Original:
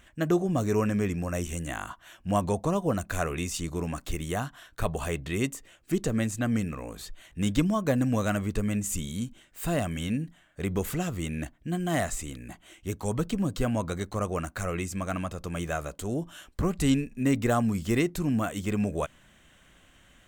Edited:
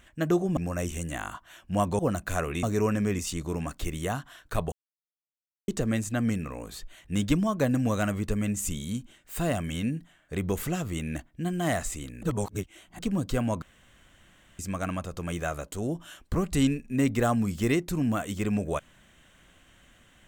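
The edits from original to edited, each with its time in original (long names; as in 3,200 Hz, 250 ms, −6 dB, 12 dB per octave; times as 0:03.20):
0:00.57–0:01.13: move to 0:03.46
0:02.55–0:02.82: remove
0:04.99–0:05.95: silence
0:12.50–0:13.26: reverse
0:13.89–0:14.86: fill with room tone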